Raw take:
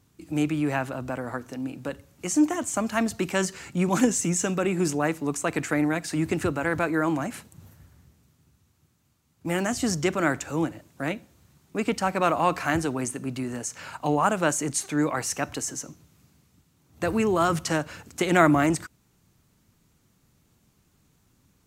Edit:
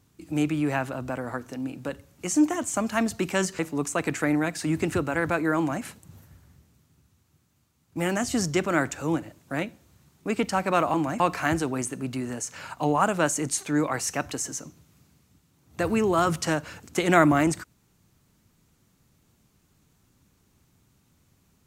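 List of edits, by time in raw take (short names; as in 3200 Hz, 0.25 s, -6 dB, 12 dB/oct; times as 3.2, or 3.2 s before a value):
3.59–5.08 cut
7.06–7.32 copy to 12.43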